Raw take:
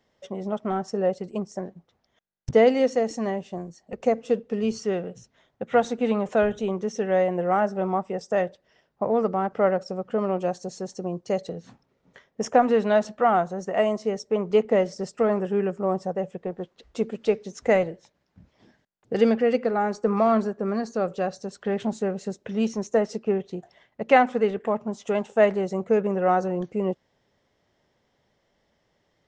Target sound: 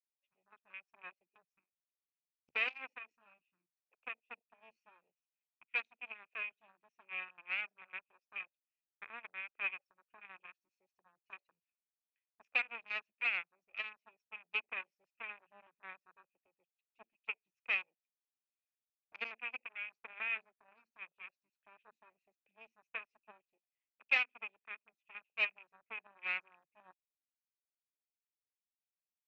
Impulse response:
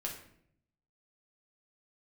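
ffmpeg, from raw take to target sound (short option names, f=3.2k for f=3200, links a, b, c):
-af "aeval=exprs='0.631*(cos(1*acos(clip(val(0)/0.631,-1,1)))-cos(1*PI/2))+0.0708*(cos(6*acos(clip(val(0)/0.631,-1,1)))-cos(6*PI/2))+0.112*(cos(7*acos(clip(val(0)/0.631,-1,1)))-cos(7*PI/2))':c=same,afwtdn=0.0112,bandpass=f=2.5k:t=q:w=19:csg=0,volume=6.5dB"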